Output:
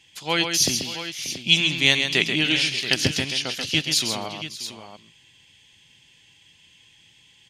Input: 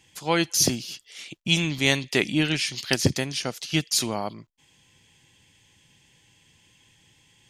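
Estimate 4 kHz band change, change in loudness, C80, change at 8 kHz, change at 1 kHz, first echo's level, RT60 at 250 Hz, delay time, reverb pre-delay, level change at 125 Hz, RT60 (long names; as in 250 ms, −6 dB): +6.5 dB, +3.0 dB, no reverb audible, +1.0 dB, −1.0 dB, −6.5 dB, no reverb audible, 134 ms, no reverb audible, −2.5 dB, no reverb audible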